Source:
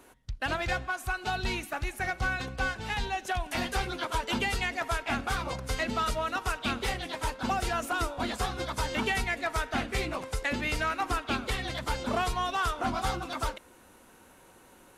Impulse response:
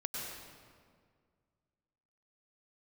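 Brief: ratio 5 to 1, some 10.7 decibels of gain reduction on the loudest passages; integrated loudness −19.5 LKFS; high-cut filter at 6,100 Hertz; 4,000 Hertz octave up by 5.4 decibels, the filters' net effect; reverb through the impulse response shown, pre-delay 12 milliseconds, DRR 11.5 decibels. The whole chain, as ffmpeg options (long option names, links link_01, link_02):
-filter_complex "[0:a]lowpass=6100,equalizer=frequency=4000:width_type=o:gain=7.5,acompressor=threshold=-37dB:ratio=5,asplit=2[link_01][link_02];[1:a]atrim=start_sample=2205,adelay=12[link_03];[link_02][link_03]afir=irnorm=-1:irlink=0,volume=-13.5dB[link_04];[link_01][link_04]amix=inputs=2:normalize=0,volume=19.5dB"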